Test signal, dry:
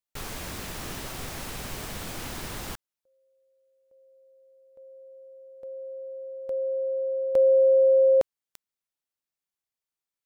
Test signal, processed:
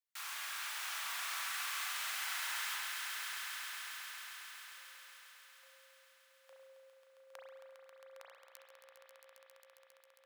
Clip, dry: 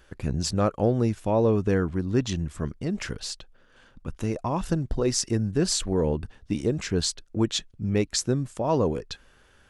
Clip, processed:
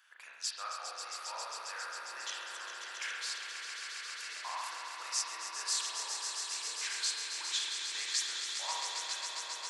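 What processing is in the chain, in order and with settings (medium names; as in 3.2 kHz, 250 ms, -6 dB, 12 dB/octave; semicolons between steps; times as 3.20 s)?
compression, threshold -22 dBFS; high-pass 1.1 kHz 24 dB/octave; echo with a slow build-up 135 ms, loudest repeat 5, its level -8 dB; spring tank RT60 1.3 s, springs 33 ms, chirp 30 ms, DRR -2.5 dB; trim -5.5 dB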